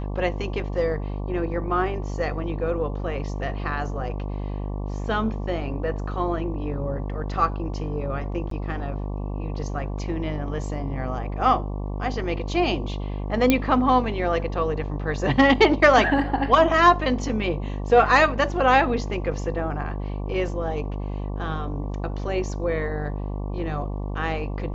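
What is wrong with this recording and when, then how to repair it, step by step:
buzz 50 Hz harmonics 23 -29 dBFS
8.50–8.51 s: dropout 13 ms
13.50 s: pop -4 dBFS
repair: de-click; de-hum 50 Hz, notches 23; interpolate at 8.50 s, 13 ms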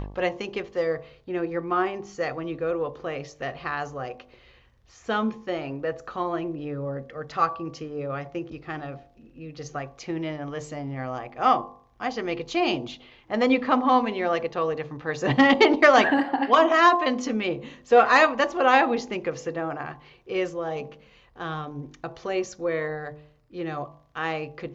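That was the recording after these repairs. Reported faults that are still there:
nothing left

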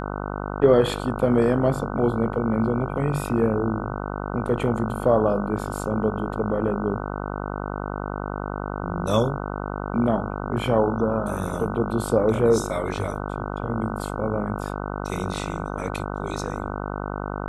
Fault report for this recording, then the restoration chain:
buzz 50 Hz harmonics 30 -30 dBFS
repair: de-hum 50 Hz, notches 30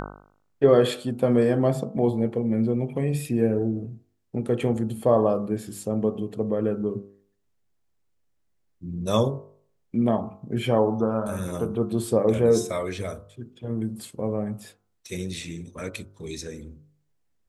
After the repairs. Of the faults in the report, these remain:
nothing left

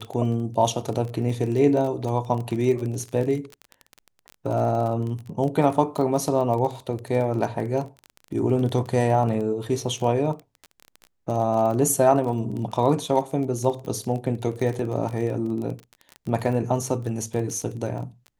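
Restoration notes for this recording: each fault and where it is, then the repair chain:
crackle 24 per s -29 dBFS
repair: de-click

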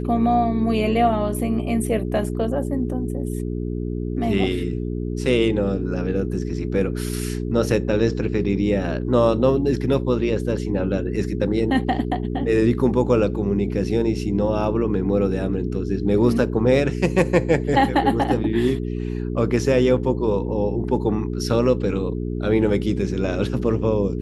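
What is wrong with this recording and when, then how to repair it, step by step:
hum 60 Hz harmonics 7 -26 dBFS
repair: de-hum 60 Hz, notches 7

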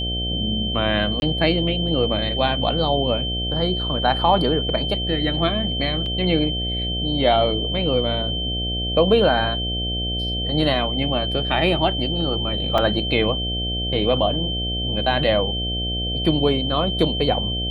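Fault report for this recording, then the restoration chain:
buzz 60 Hz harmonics 12 -27 dBFS
whine 3.1 kHz -25 dBFS
1.20–1.22 s: dropout 21 ms
6.06 s: dropout 2.3 ms
12.78 s: dropout 2.8 ms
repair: de-hum 60 Hz, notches 12; band-stop 3.1 kHz, Q 30; interpolate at 1.20 s, 21 ms; interpolate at 6.06 s, 2.3 ms; interpolate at 12.78 s, 2.8 ms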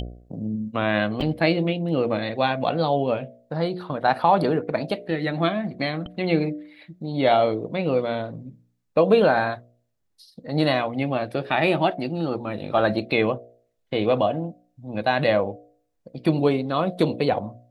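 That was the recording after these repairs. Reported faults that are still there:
nothing left

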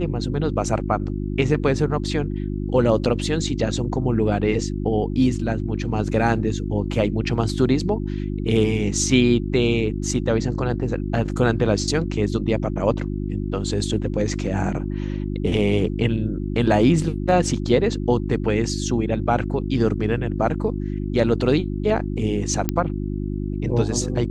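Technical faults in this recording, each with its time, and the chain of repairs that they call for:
hum 50 Hz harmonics 7 -26 dBFS
22.69 s: pop -6 dBFS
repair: de-click; de-hum 50 Hz, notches 7

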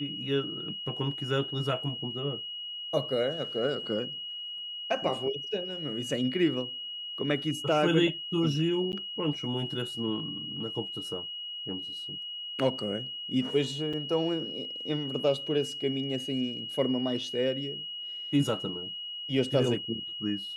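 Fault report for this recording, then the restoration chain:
whine 2.9 kHz -36 dBFS
8.92–8.93 s: dropout 9.6 ms
13.93 s: dropout 4.8 ms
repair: band-stop 2.9 kHz, Q 30; interpolate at 8.92 s, 9.6 ms; interpolate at 13.93 s, 4.8 ms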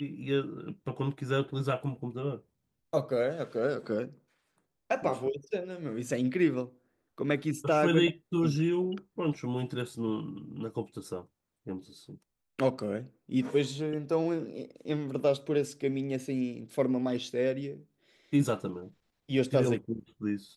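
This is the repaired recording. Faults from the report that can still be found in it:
nothing left

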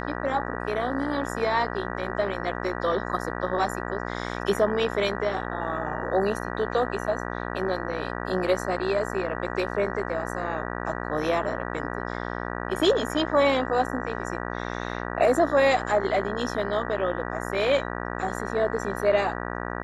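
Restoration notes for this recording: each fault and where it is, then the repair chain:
buzz 60 Hz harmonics 32 -32 dBFS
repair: de-hum 60 Hz, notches 32

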